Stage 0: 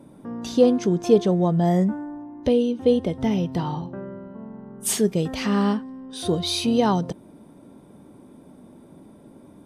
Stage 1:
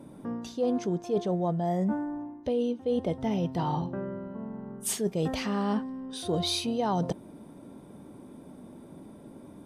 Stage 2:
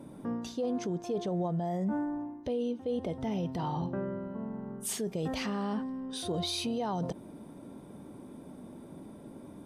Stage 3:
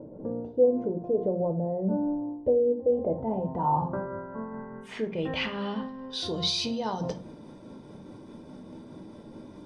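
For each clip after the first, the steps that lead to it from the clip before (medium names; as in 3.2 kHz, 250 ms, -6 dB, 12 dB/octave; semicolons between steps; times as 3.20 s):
dynamic bell 700 Hz, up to +6 dB, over -35 dBFS, Q 1.3; reverse; compression 8:1, threshold -25 dBFS, peak gain reduction 17 dB; reverse
peak limiter -25 dBFS, peak gain reduction 8 dB
tremolo 4.8 Hz, depth 29%; low-pass sweep 550 Hz -> 5.2 kHz, 2.77–6.35 s; reverberation RT60 0.45 s, pre-delay 4 ms, DRR 5.5 dB; trim +2 dB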